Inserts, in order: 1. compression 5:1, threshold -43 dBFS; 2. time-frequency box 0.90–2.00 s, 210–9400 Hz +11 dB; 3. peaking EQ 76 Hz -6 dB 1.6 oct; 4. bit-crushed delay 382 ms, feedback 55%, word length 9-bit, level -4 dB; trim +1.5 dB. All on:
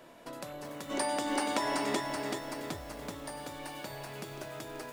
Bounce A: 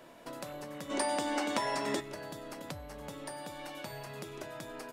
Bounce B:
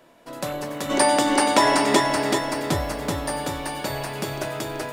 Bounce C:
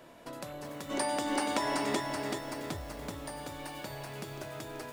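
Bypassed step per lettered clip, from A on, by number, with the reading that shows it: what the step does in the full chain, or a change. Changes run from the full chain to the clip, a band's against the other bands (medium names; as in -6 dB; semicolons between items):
4, crest factor change +2.5 dB; 1, mean gain reduction 12.0 dB; 3, 125 Hz band +3.0 dB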